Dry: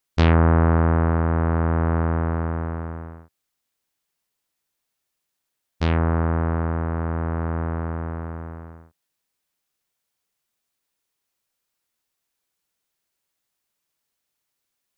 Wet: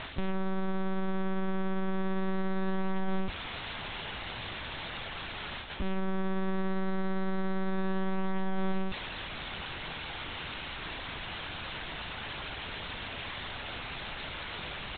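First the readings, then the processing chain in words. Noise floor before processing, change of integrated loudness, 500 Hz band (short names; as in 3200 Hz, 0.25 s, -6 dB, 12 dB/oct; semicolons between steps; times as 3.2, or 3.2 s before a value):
-80 dBFS, -13.5 dB, -7.5 dB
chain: zero-crossing step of -31 dBFS; reverse; compressor 6:1, threshold -29 dBFS, peak gain reduction 15.5 dB; reverse; limiter -28 dBFS, peak gain reduction 7 dB; in parallel at -4 dB: wrapped overs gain 41.5 dB; on the sum: monotone LPC vocoder at 8 kHz 190 Hz; speakerphone echo 0.25 s, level -22 dB; gain +6.5 dB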